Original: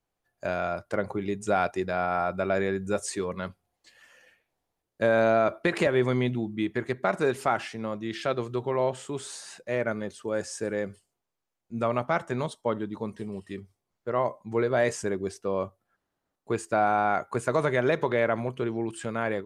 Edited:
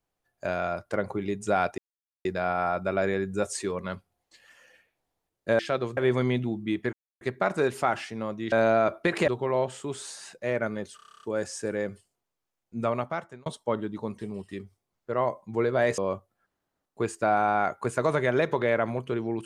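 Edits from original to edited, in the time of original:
1.78 s: insert silence 0.47 s
5.12–5.88 s: swap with 8.15–8.53 s
6.84 s: insert silence 0.28 s
10.21 s: stutter 0.03 s, 10 plays
11.84–12.44 s: fade out
14.96–15.48 s: delete

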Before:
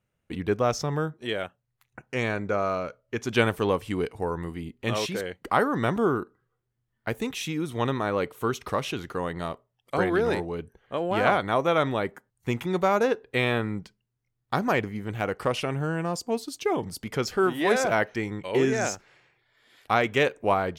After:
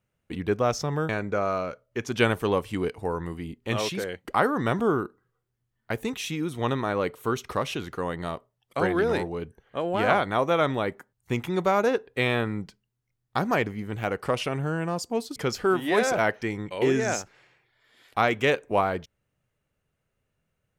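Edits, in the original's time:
1.09–2.26 s: delete
16.53–17.09 s: delete

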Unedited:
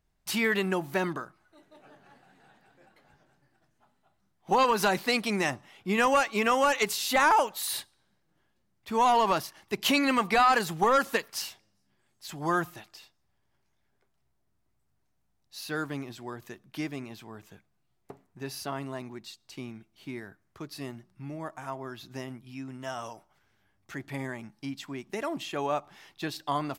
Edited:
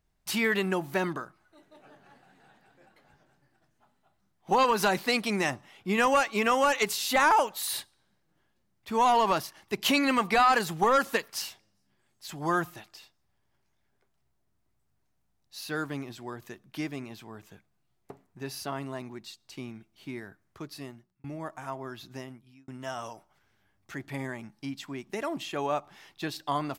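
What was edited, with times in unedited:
20.66–21.24 s: fade out
22.05–22.68 s: fade out

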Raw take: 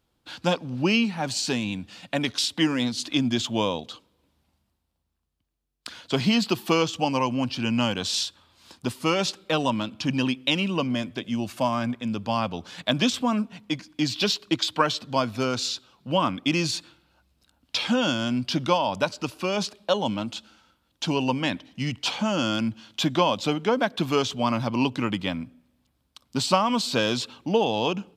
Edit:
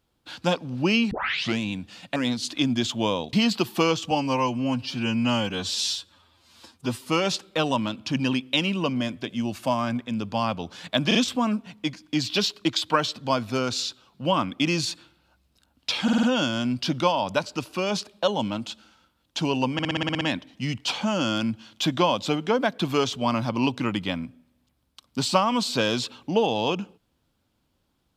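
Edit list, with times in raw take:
1.11 s: tape start 0.48 s
2.16–2.71 s: delete
3.88–6.24 s: delete
7.02–8.96 s: stretch 1.5×
13.01 s: stutter 0.04 s, 3 plays
17.89 s: stutter 0.05 s, 5 plays
21.39 s: stutter 0.06 s, 9 plays

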